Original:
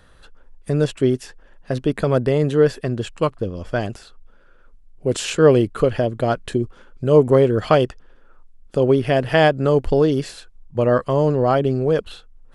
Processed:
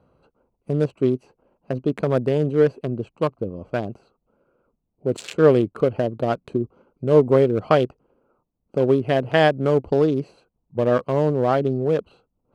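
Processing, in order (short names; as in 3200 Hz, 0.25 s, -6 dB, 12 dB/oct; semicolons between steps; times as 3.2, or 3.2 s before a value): Wiener smoothing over 25 samples; HPF 120 Hz 12 dB/oct; gain -1.5 dB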